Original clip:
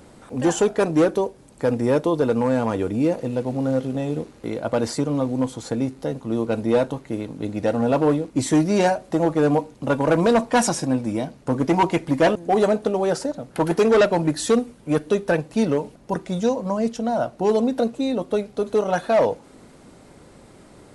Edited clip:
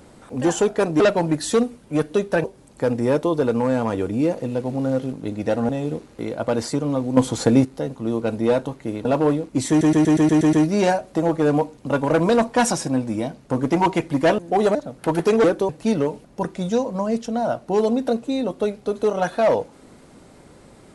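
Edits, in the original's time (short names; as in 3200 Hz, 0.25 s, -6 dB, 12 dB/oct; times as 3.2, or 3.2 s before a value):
1–1.25 swap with 13.96–15.4
5.42–5.9 gain +8.5 dB
7.3–7.86 move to 3.94
8.5 stutter 0.12 s, 8 plays
12.72–13.27 cut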